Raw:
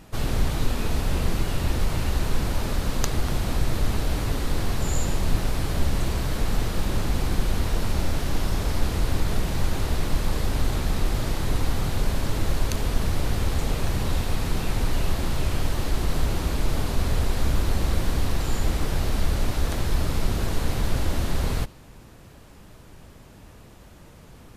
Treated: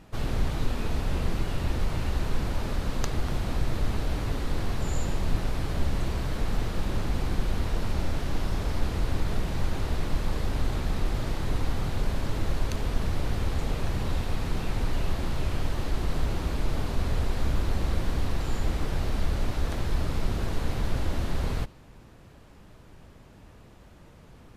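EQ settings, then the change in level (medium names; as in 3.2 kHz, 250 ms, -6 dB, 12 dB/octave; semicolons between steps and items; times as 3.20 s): treble shelf 6.1 kHz -9 dB; -3.5 dB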